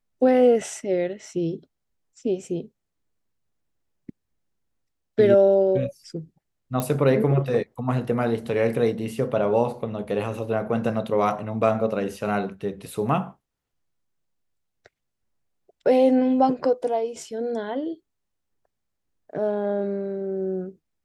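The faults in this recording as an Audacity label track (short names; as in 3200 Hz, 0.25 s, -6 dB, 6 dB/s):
6.800000	6.800000	pop -12 dBFS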